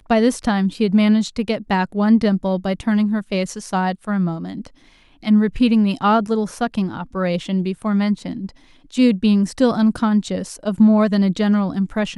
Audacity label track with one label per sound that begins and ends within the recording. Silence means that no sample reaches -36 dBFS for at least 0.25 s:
5.230000	8.500000	sound